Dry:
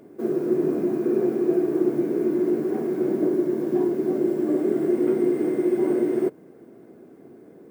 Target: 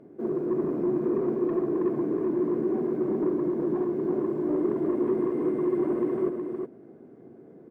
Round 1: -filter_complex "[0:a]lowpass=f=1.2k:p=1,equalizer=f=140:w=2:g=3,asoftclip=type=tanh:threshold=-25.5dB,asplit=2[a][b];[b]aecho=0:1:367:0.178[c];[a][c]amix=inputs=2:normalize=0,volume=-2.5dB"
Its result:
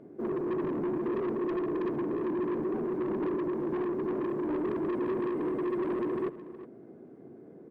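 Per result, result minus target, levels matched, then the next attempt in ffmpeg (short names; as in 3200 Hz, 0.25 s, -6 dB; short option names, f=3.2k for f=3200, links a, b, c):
echo-to-direct -9.5 dB; soft clip: distortion +8 dB
-filter_complex "[0:a]lowpass=f=1.2k:p=1,equalizer=f=140:w=2:g=3,asoftclip=type=tanh:threshold=-25.5dB,asplit=2[a][b];[b]aecho=0:1:367:0.531[c];[a][c]amix=inputs=2:normalize=0,volume=-2.5dB"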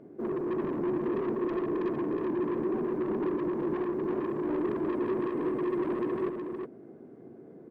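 soft clip: distortion +8 dB
-filter_complex "[0:a]lowpass=f=1.2k:p=1,equalizer=f=140:w=2:g=3,asoftclip=type=tanh:threshold=-17.5dB,asplit=2[a][b];[b]aecho=0:1:367:0.531[c];[a][c]amix=inputs=2:normalize=0,volume=-2.5dB"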